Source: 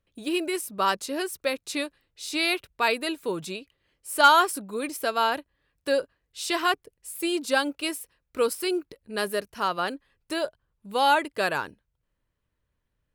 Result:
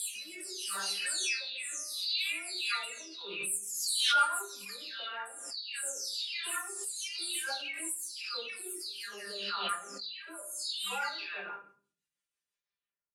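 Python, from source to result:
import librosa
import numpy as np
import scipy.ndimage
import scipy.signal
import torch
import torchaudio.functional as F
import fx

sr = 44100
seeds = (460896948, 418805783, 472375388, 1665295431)

p1 = fx.spec_delay(x, sr, highs='early', ms=612)
p2 = fx.weighting(p1, sr, curve='ITU-R 468')
p3 = fx.spec_box(p2, sr, start_s=0.79, length_s=1.01, low_hz=1200.0, high_hz=9400.0, gain_db=8)
p4 = fx.high_shelf(p3, sr, hz=9500.0, db=10.5)
p5 = fx.rider(p4, sr, range_db=4, speed_s=2.0)
p6 = p4 + (p5 * librosa.db_to_amplitude(1.0))
p7 = fx.comb_fb(p6, sr, f0_hz=200.0, decay_s=0.36, harmonics='all', damping=0.0, mix_pct=90)
p8 = fx.rotary_switch(p7, sr, hz=0.8, then_hz=6.0, switch_at_s=2.29)
p9 = fx.room_shoebox(p8, sr, seeds[0], volume_m3=37.0, walls='mixed', distance_m=0.39)
p10 = fx.pre_swell(p9, sr, db_per_s=39.0)
y = p10 * librosa.db_to_amplitude(-7.5)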